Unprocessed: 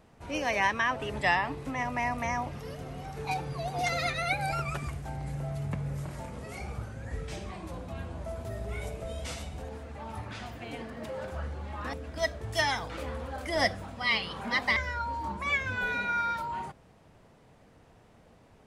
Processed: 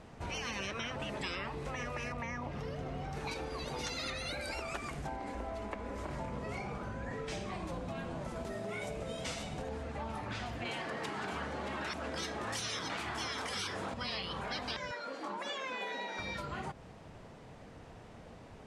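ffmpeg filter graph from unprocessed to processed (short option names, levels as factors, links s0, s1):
-filter_complex "[0:a]asettb=1/sr,asplit=3[s0][s1][s2];[s0]atrim=end=2.124[s3];[s1]atrim=start=2.12:end=3.13,asetpts=PTS-STARTPTS,afade=t=in:d=0.004:c=qsin,afade=t=out:st=1.006:d=0.004:c=qsin,lowpass=f=3600:p=1,acompressor=threshold=0.0158:ratio=2:attack=3.2:release=140:knee=1:detection=peak[s4];[s2]atrim=start=3.126[s5];[s3][s4]acrossfade=d=0.004:c1=hsin:c2=qsin[s6];[s6][s5]acrossfade=d=0.004:c1=qsin:c2=hsin,asettb=1/sr,asplit=3[s7][s8][s9];[s7]atrim=end=5.074[s10];[s8]atrim=start=5.07:end=7.27,asetpts=PTS-STARTPTS,afade=t=in:d=0.004:c=qsin,afade=t=out:st=2.196:d=0.004:c=qsin,aemphasis=mode=reproduction:type=cd,aeval=exprs='val(0)+0.00224*sin(2*PI*1000*n/s)':c=same[s11];[s9]atrim=start=7.266[s12];[s10][s11]acrossfade=d=0.004:c1=hsin:c2=qsin[s13];[s13][s12]acrossfade=d=0.004:c1=qsin:c2=hsin,asettb=1/sr,asplit=3[s14][s15][s16];[s14]atrim=end=10.654[s17];[s15]atrim=start=10.65:end=13.94,asetpts=PTS-STARTPTS,afade=t=in:d=0.004:c=qsin,afade=t=out:st=3.286:d=0.004:c=qsin,highpass=210,acontrast=88,aecho=1:1:625:0.335,atrim=end_sample=145089[s18];[s16]atrim=start=13.936[s19];[s17][s18]acrossfade=d=0.004:c1=hsin:c2=qsin[s20];[s20][s19]acrossfade=d=0.004:c1=qsin:c2=hsin,asettb=1/sr,asplit=3[s21][s22][s23];[s21]atrim=end=14.914[s24];[s22]atrim=start=14.91:end=16.19,asetpts=PTS-STARTPTS,afade=t=in:d=0.004:c=qsin,afade=t=out:st=1.276:d=0.004:c=qsin,highpass=f=190:w=0.5412,highpass=f=190:w=1.3066,bass=f=250:g=-14,treble=f=4000:g=-3[s25];[s23]atrim=start=16.186[s26];[s24][s25]acrossfade=d=0.004:c1=hsin:c2=qsin[s27];[s27][s26]acrossfade=d=0.004:c1=qsin:c2=hsin,afftfilt=real='re*lt(hypot(re,im),0.0891)':imag='im*lt(hypot(re,im),0.0891)':win_size=1024:overlap=0.75,lowpass=8500,acompressor=threshold=0.00708:ratio=4,volume=2"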